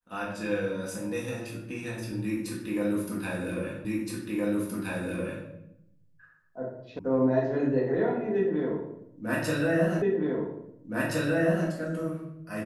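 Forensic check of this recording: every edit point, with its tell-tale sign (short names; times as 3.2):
3.85 repeat of the last 1.62 s
6.99 sound cut off
10.02 repeat of the last 1.67 s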